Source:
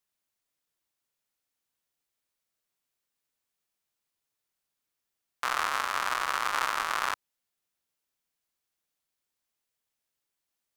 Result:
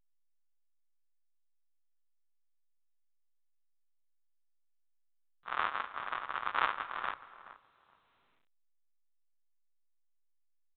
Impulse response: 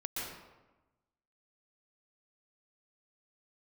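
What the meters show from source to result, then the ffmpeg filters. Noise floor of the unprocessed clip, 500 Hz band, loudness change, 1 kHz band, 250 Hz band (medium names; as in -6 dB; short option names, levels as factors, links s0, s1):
-85 dBFS, -6.5 dB, -6.5 dB, -5.5 dB, -6.0 dB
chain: -filter_complex "[0:a]agate=range=0.00501:threshold=0.0501:ratio=16:detection=peak,bandreject=f=50:t=h:w=6,bandreject=f=100:t=h:w=6,bandreject=f=150:t=h:w=6,asplit=2[s0][s1];[s1]adelay=423,lowpass=f=1600:p=1,volume=0.2,asplit=2[s2][s3];[s3]adelay=423,lowpass=f=1600:p=1,volume=0.2[s4];[s0][s2][s4]amix=inputs=3:normalize=0,asplit=2[s5][s6];[1:a]atrim=start_sample=2205,adelay=74[s7];[s6][s7]afir=irnorm=-1:irlink=0,volume=0.0841[s8];[s5][s8]amix=inputs=2:normalize=0,volume=1.5" -ar 8000 -c:a pcm_alaw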